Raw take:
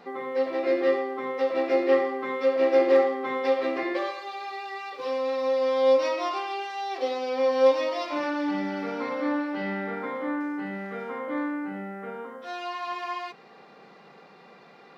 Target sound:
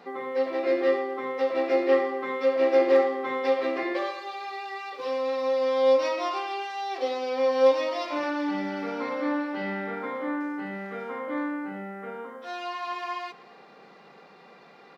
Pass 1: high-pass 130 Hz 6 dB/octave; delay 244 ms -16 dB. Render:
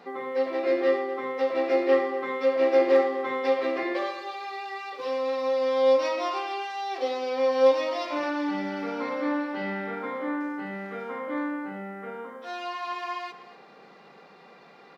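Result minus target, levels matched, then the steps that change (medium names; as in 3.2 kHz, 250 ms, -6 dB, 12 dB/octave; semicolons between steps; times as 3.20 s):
echo-to-direct +6.5 dB
change: delay 244 ms -22.5 dB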